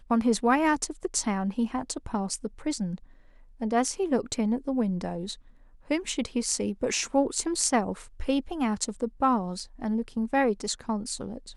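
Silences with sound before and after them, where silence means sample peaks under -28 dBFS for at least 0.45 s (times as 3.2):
2.95–3.62
5.32–5.91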